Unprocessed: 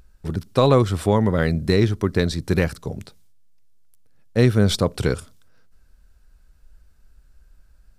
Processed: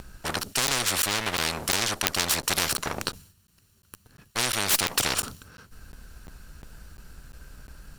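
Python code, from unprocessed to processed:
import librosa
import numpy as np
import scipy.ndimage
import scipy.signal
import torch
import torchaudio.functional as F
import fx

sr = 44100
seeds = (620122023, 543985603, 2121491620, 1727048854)

y = fx.lower_of_two(x, sr, delay_ms=0.71)
y = fx.buffer_crackle(y, sr, first_s=0.67, period_s=0.35, block=512, kind='zero')
y = fx.spectral_comp(y, sr, ratio=10.0)
y = y * 10.0 ** (4.0 / 20.0)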